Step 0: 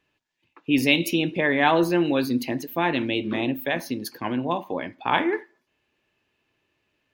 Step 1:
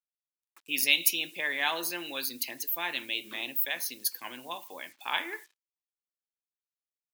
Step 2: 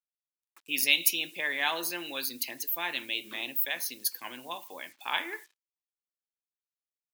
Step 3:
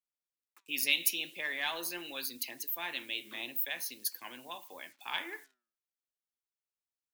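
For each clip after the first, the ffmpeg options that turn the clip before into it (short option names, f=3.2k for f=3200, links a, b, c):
-af "acrusher=bits=8:mix=0:aa=0.5,aderivative,volume=5.5dB"
-af anull
-filter_complex "[0:a]acrossover=split=130|1700|4100[a][b][c][d];[b]asoftclip=type=tanh:threshold=-29.5dB[e];[a][e][c][d]amix=inputs=4:normalize=0,flanger=delay=0.5:depth=8.4:regen=89:speed=0.44:shape=triangular"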